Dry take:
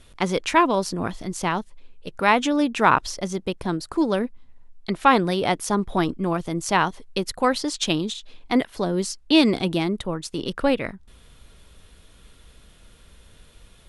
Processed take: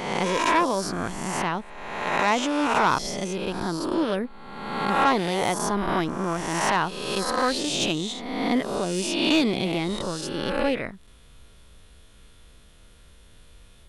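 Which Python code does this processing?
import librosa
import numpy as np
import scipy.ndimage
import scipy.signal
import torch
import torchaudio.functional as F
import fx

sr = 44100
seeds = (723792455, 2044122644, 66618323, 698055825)

y = fx.spec_swells(x, sr, rise_s=1.25)
y = 10.0 ** (-7.0 / 20.0) * np.tanh(y / 10.0 ** (-7.0 / 20.0))
y = y * librosa.db_to_amplitude(-4.5)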